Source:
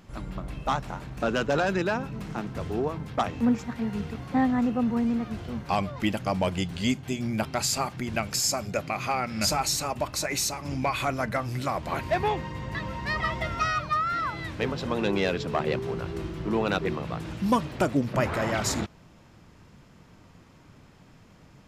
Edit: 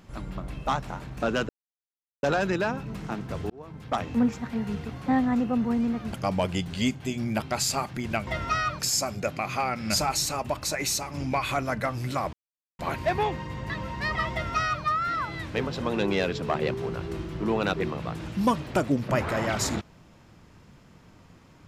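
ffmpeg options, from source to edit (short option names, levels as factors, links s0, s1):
-filter_complex "[0:a]asplit=7[s0][s1][s2][s3][s4][s5][s6];[s0]atrim=end=1.49,asetpts=PTS-STARTPTS,afade=t=out:st=1.486:d=0.004:c=hsin,apad=pad_dur=0.74[s7];[s1]atrim=start=1.49:end=2.76,asetpts=PTS-STARTPTS,afade=t=in:d=0.004:c=hsin,afade=t=out:st=1.266:d=0.004:c=hsin[s8];[s2]atrim=start=2.76:end=5.392,asetpts=PTS-STARTPTS,afade=t=in:d=0.54[s9];[s3]atrim=start=6.158:end=8.302[s10];[s4]atrim=start=13.368:end=13.892[s11];[s5]atrim=start=8.298:end=11.84,asetpts=PTS-STARTPTS,afade=t=out:st=3.538:d=0.004:c=hsin,apad=pad_dur=0.46[s12];[s6]atrim=start=11.84,asetpts=PTS-STARTPTS,afade=t=in:d=0.004:c=hsin[s13];[s7][s8][s9]concat=n=3:v=0:a=1[s14];[s14][s10]acrossfade=d=0.004:c1=hsin:c2=hsin[s15];[s15][s11]acrossfade=d=0.004:c1=hsin:c2=hsin[s16];[s12][s13]concat=n=2:v=0:a=1[s17];[s16][s17]acrossfade=d=0.004:c1=hsin:c2=hsin"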